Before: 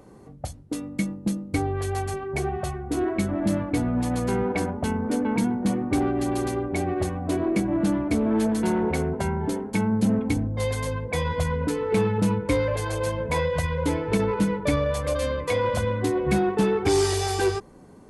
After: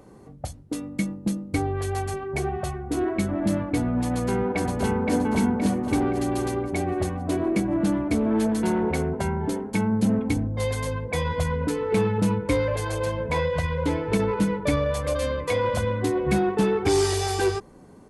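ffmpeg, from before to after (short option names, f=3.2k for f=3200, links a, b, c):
-filter_complex "[0:a]asplit=2[a][b];[b]afade=t=in:st=4.12:d=0.01,afade=t=out:st=5.14:d=0.01,aecho=0:1:520|1040|1560|2080|2600|3120:0.749894|0.337452|0.151854|0.0683341|0.0307503|0.0138377[c];[a][c]amix=inputs=2:normalize=0,asettb=1/sr,asplit=3[d][e][f];[d]atrim=end=13.054[g];[e]atrim=start=13.05:end=14,asetpts=PTS-STARTPTS,afade=t=in:d=0.004:c=qsin,afade=t=out:st=0.946:d=0.004:c=qsin,acrossover=split=5500[h][i];[i]acompressor=threshold=-47dB:ratio=4:attack=1:release=60[j];[h][j]amix=inputs=2:normalize=0[k];[f]atrim=start=13.996[l];[g][k]acrossfade=d=0.004:c1=hsin:c2=qsin[m];[m][l]acrossfade=d=0.004:c1=qsin:c2=hsin"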